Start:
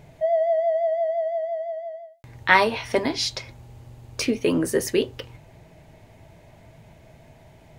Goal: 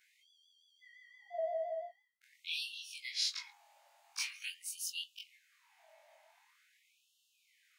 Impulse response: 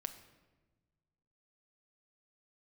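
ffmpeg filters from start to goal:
-af "afftfilt=real='re':imag='-im':win_size=2048:overlap=0.75,afftfilt=real='re*gte(b*sr/1024,540*pow(2700/540,0.5+0.5*sin(2*PI*0.45*pts/sr)))':imag='im*gte(b*sr/1024,540*pow(2700/540,0.5+0.5*sin(2*PI*0.45*pts/sr)))':win_size=1024:overlap=0.75,volume=-4dB"

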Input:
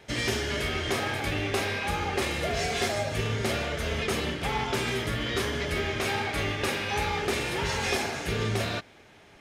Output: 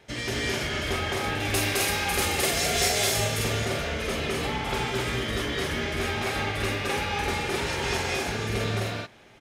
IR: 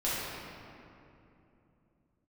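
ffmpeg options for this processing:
-filter_complex "[0:a]asettb=1/sr,asplit=3[link_01][link_02][link_03];[link_01]atrim=end=1.404[link_04];[link_02]atrim=start=1.4:end=3.44,asetpts=PTS-STARTPTS,afade=type=in:duration=0.004:curve=qsin,afade=type=out:start_time=2.036:duration=0.004:curve=qsin,aemphasis=mode=production:type=75kf[link_05];[link_03]atrim=start=3.436[link_06];[link_04][link_05]acrossfade=duration=0.004:curve1=hsin:curve2=qsin[link_07];[link_07][link_06]acrossfade=duration=0.004:curve1=qsin:curve2=hsin,aecho=1:1:212.8|259.5:0.891|0.794,volume=-3dB"

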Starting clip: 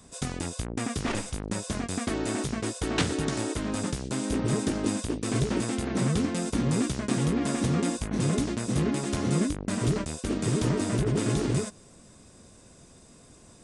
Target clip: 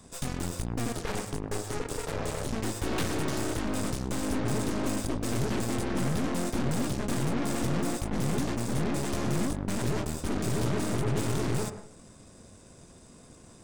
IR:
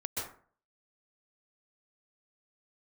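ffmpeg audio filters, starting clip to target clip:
-filter_complex "[0:a]asettb=1/sr,asplit=3[link_01][link_02][link_03];[link_01]atrim=end=0.924[link_04];[link_02]atrim=start=0.92:end=2.47,asetpts=PTS-STARTPTS,afade=type=in:duration=0.004:curve=qsin,afade=type=out:start_time=1.546:duration=0.004:curve=qsin,aeval=exprs='val(0)*sin(2*PI*210*n/s)':channel_layout=same[link_05];[link_03]atrim=start=2.466[link_06];[link_04][link_05]acrossfade=duration=0.004:curve1=hsin:curve2=qsin[link_07];[link_07][link_06]acrossfade=duration=0.004:curve1=qsin:curve2=hsin,asoftclip=type=tanh:threshold=-20.5dB,aeval=exprs='0.0944*(cos(1*acos(clip(val(0)/0.0944,-1,1)))-cos(1*PI/2))+0.0266*(cos(4*acos(clip(val(0)/0.0944,-1,1)))-cos(4*PI/2))+0.00944*(cos(5*acos(clip(val(0)/0.0944,-1,1)))-cos(5*PI/2))+0.0188*(cos(6*acos(clip(val(0)/0.0944,-1,1)))-cos(6*PI/2))+0.0266*(cos(8*acos(clip(val(0)/0.0944,-1,1)))-cos(8*PI/2))':channel_layout=same,asplit=2[link_08][link_09];[1:a]atrim=start_sample=2205,asetrate=52920,aresample=44100,lowpass=2100[link_10];[link_09][link_10]afir=irnorm=-1:irlink=0,volume=-9dB[link_11];[link_08][link_11]amix=inputs=2:normalize=0,volume=-4.5dB"

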